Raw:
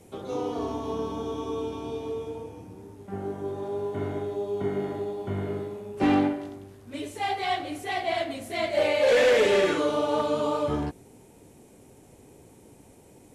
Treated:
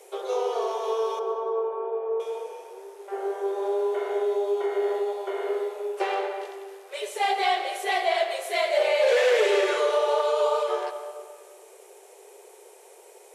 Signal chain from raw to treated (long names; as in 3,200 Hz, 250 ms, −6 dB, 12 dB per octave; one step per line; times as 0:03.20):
0:01.19–0:02.20: low-pass filter 1,500 Hz 24 dB per octave
downward compressor 4 to 1, threshold −26 dBFS, peak gain reduction 7.5 dB
linear-phase brick-wall high-pass 360 Hz
comb and all-pass reverb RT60 1.8 s, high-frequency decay 0.8×, pre-delay 70 ms, DRR 10 dB
level +6 dB